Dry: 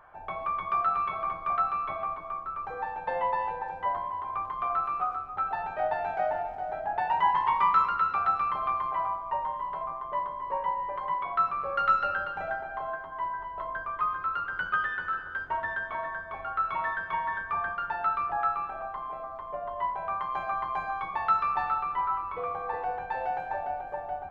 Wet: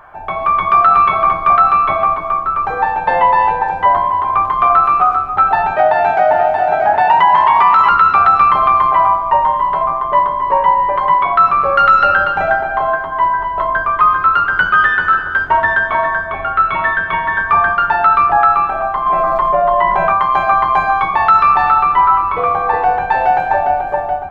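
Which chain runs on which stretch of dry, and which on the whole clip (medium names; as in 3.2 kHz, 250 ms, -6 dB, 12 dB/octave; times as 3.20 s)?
5.76–7.89 s: high-pass 120 Hz 6 dB/octave + delay 629 ms -7.5 dB
16.27–17.38 s: low-pass 3.9 kHz 24 dB/octave + dynamic bell 930 Hz, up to -7 dB, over -42 dBFS, Q 1.6
19.06–20.12 s: comb 5.6 ms, depth 61% + level flattener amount 70%
whole clip: band-stop 510 Hz, Q 12; level rider gain up to 5 dB; loudness maximiser +15 dB; trim -1 dB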